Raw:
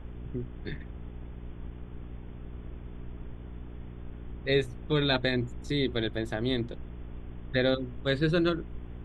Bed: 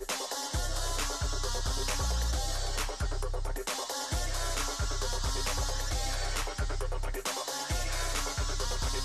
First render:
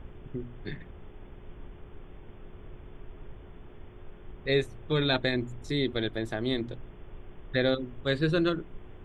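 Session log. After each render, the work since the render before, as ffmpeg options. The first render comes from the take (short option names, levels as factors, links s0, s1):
-af "bandreject=f=60:t=h:w=4,bandreject=f=120:t=h:w=4,bandreject=f=180:t=h:w=4,bandreject=f=240:t=h:w=4,bandreject=f=300:t=h:w=4"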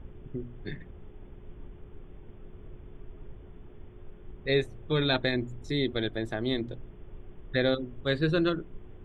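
-af "afftdn=nr=6:nf=-49"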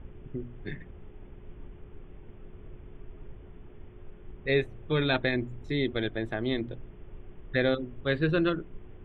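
-af "highshelf=f=3900:t=q:w=1.5:g=-10.5"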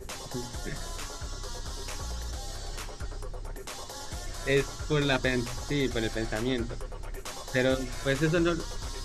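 -filter_complex "[1:a]volume=0.501[s0];[0:a][s0]amix=inputs=2:normalize=0"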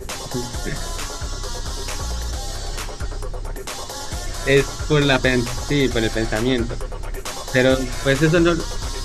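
-af "volume=3.16,alimiter=limit=0.794:level=0:latency=1"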